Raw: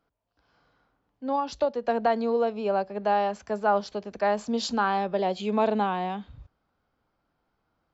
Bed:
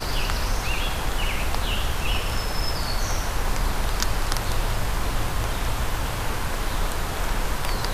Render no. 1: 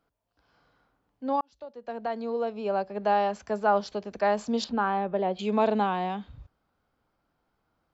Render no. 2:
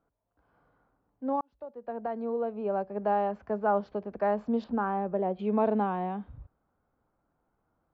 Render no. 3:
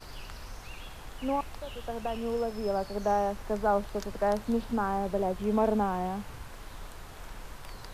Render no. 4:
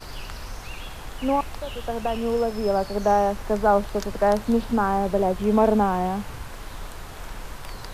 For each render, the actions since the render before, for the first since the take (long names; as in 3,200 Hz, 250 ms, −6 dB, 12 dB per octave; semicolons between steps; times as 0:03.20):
0:01.41–0:03.10: fade in; 0:04.64–0:05.39: high-frequency loss of the air 400 metres
low-pass filter 1,300 Hz 12 dB per octave; dynamic equaliser 860 Hz, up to −3 dB, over −33 dBFS, Q 0.78
mix in bed −18.5 dB
level +7.5 dB